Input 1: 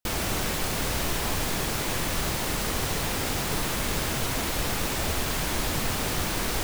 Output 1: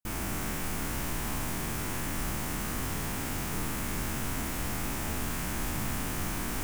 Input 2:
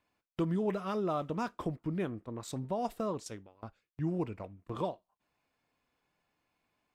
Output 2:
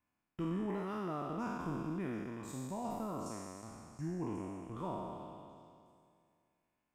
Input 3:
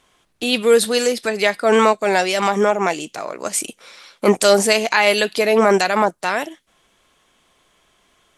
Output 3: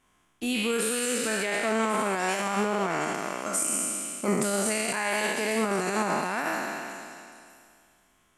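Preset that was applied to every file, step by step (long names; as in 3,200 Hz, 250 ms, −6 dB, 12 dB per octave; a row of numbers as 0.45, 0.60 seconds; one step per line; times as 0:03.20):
peak hold with a decay on every bin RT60 2.33 s
on a send: echo through a band-pass that steps 364 ms, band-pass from 3,400 Hz, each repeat 0.7 octaves, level −7 dB
on the sum: dynamic equaliser 8,400 Hz, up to +3 dB, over −30 dBFS, Q 1.9
brickwall limiter −6.5 dBFS
octave-band graphic EQ 250/500/4,000 Hz +4/−7/−10 dB
level −8 dB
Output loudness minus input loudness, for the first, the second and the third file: −6.0, −5.0, −10.0 LU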